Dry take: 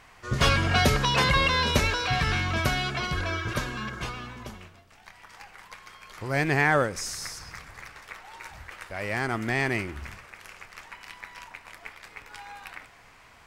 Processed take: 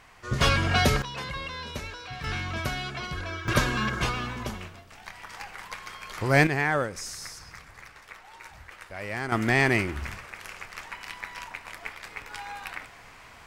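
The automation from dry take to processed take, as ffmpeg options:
-af "asetnsamples=n=441:p=0,asendcmd='1.02 volume volume -13dB;2.24 volume volume -5dB;3.48 volume volume 6.5dB;6.47 volume volume -3.5dB;9.32 volume volume 4.5dB',volume=-0.5dB"

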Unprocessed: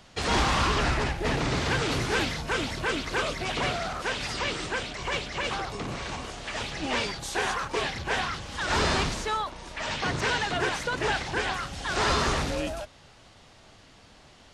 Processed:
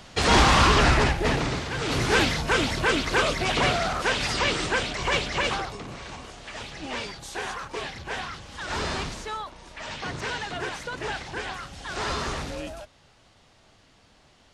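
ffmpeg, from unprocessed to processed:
-af "volume=18.5dB,afade=t=out:st=1.04:d=0.66:silence=0.223872,afade=t=in:st=1.7:d=0.44:silence=0.251189,afade=t=out:st=5.39:d=0.43:silence=0.316228"

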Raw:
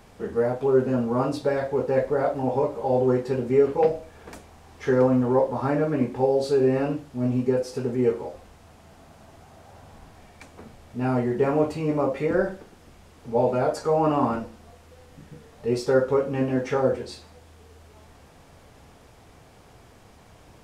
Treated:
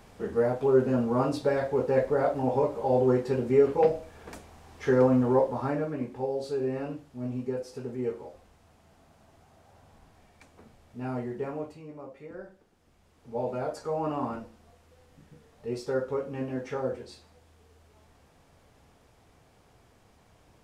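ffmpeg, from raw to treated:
-af "volume=9dB,afade=t=out:st=5.33:d=0.64:silence=0.421697,afade=t=out:st=11.22:d=0.67:silence=0.298538,afade=t=in:st=12.54:d=1.01:silence=0.281838"

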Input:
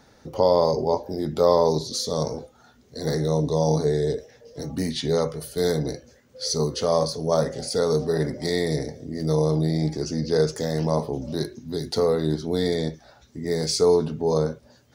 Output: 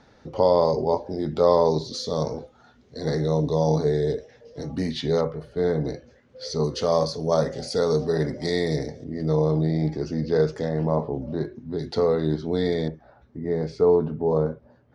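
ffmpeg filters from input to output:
-af "asetnsamples=n=441:p=0,asendcmd='5.21 lowpass f 1800;5.84 lowpass f 3300;6.64 lowpass f 5700;9.04 lowpass f 2900;10.69 lowpass f 1700;11.79 lowpass f 3400;12.88 lowpass f 1400',lowpass=4.3k"

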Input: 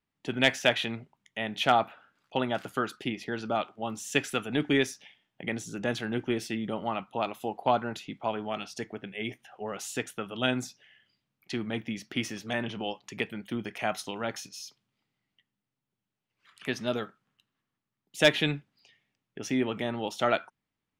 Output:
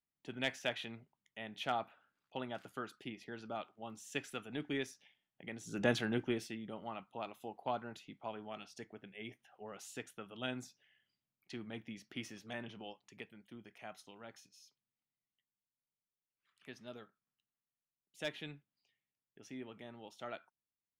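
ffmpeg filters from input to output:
-af "volume=-1dB,afade=t=in:st=5.6:d=0.24:silence=0.237137,afade=t=out:st=5.84:d=0.73:silence=0.251189,afade=t=out:st=12.56:d=0.8:silence=0.473151"

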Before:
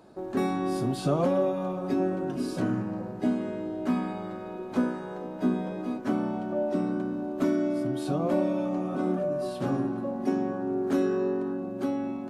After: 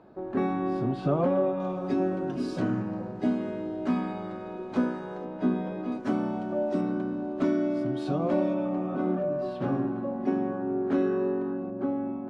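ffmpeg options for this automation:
-af "asetnsamples=n=441:p=0,asendcmd='1.6 lowpass f 5600;5.25 lowpass f 3600;5.92 lowpass f 7500;6.81 lowpass f 4600;8.54 lowpass f 2800;11.7 lowpass f 1400',lowpass=2.3k"

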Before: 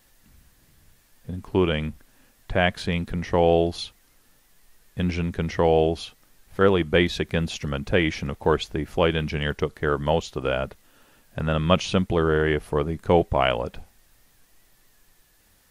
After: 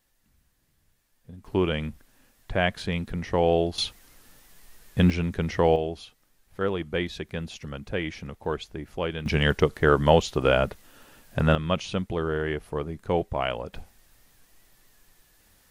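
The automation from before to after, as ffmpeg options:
-af "asetnsamples=n=441:p=0,asendcmd='1.45 volume volume -3dB;3.78 volume volume 5.5dB;5.1 volume volume -1dB;5.76 volume volume -8.5dB;9.26 volume volume 4dB;11.55 volume volume -6.5dB;13.73 volume volume 0dB',volume=-11.5dB"

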